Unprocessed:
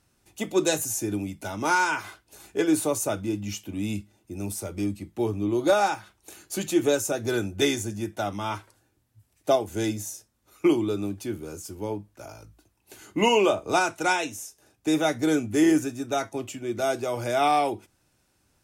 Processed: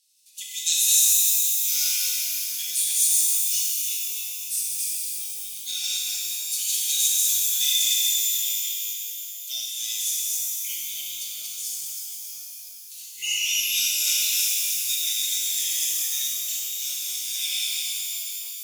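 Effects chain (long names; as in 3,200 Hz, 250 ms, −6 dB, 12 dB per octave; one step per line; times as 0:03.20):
delay that plays each chunk backwards 162 ms, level −1 dB
inverse Chebyshev high-pass filter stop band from 1,300 Hz, stop band 50 dB
reverb with rising layers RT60 3.3 s, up +12 semitones, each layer −2 dB, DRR −4.5 dB
level +5 dB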